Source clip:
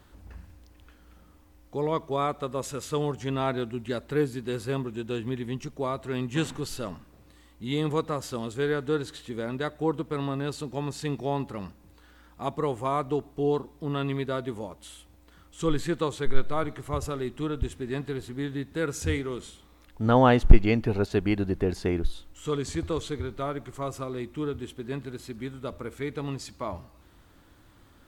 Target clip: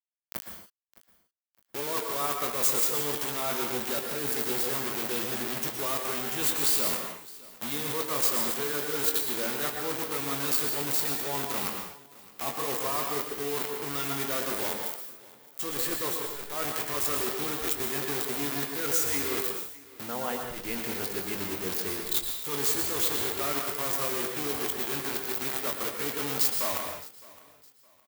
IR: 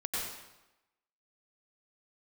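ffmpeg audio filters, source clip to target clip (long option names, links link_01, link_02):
-filter_complex "[0:a]aeval=exprs='val(0)+0.5*0.0376*sgn(val(0))':channel_layout=same,acrusher=bits=4:mix=0:aa=0.000001,highshelf=frequency=4000:gain=-9.5,areverse,acompressor=threshold=-30dB:ratio=6,areverse,aemphasis=mode=production:type=riaa,aecho=1:1:613|1226:0.0891|0.0276,asplit=2[link_01][link_02];[1:a]atrim=start_sample=2205,afade=type=out:start_time=0.32:duration=0.01,atrim=end_sample=14553,adelay=21[link_03];[link_02][link_03]afir=irnorm=-1:irlink=0,volume=-6dB[link_04];[link_01][link_04]amix=inputs=2:normalize=0"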